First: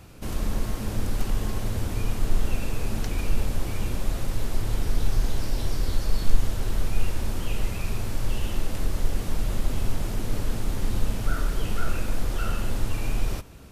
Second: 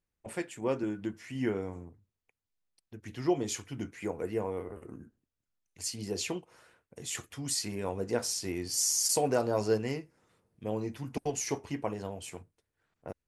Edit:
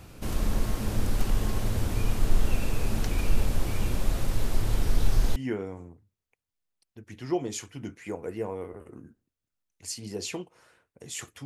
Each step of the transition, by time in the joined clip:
first
5.36 switch to second from 1.32 s

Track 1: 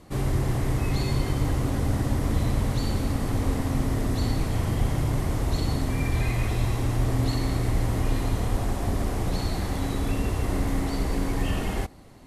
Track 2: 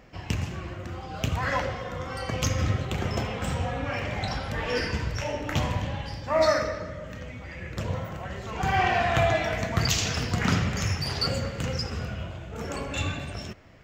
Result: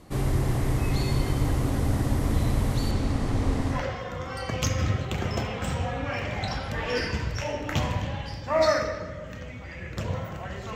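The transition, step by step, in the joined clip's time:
track 1
2.91–3.84 LPF 7200 Hz 12 dB/oct
3.77 switch to track 2 from 1.57 s, crossfade 0.14 s

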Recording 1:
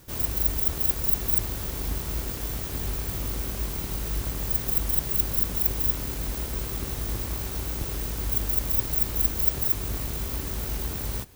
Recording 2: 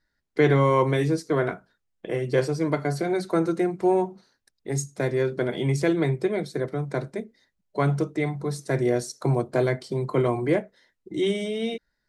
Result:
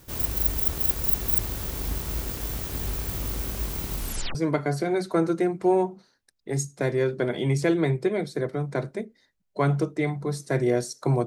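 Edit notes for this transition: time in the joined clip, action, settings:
recording 1
3.94 tape stop 0.41 s
4.35 switch to recording 2 from 2.54 s

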